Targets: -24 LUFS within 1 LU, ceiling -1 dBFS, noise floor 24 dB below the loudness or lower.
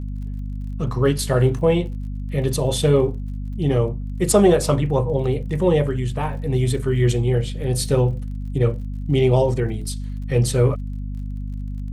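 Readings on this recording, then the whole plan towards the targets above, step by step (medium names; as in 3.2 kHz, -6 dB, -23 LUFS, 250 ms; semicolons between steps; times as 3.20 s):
tick rate 35 per s; hum 50 Hz; highest harmonic 250 Hz; hum level -25 dBFS; loudness -20.5 LUFS; peak level -3.5 dBFS; loudness target -24.0 LUFS
-> de-click; de-hum 50 Hz, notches 5; trim -3.5 dB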